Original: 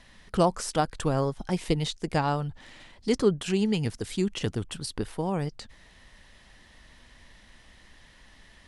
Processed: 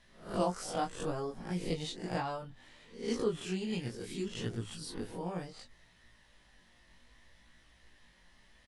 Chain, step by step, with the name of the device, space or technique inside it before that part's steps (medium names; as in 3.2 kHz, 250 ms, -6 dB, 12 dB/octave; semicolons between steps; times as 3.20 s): reverse spectral sustain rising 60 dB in 0.43 s; de-esser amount 45%; hum notches 50/100 Hz; double-tracked vocal (doubling 17 ms -5 dB; chorus 0.66 Hz, delay 17.5 ms, depth 5.2 ms); trim -8.5 dB